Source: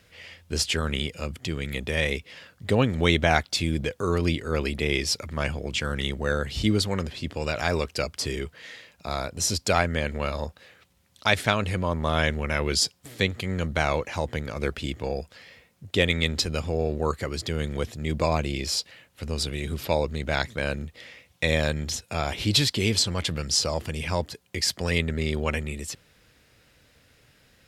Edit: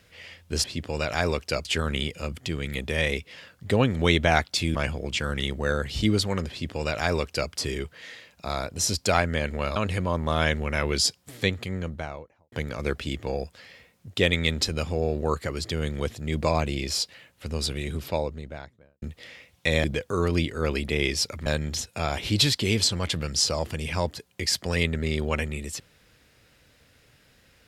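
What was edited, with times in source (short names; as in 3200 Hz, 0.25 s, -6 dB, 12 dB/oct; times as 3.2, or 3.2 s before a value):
3.74–5.36 move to 21.61
7.11–8.12 copy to 0.64
10.37–11.53 cut
13.15–14.29 studio fade out
19.49–20.79 studio fade out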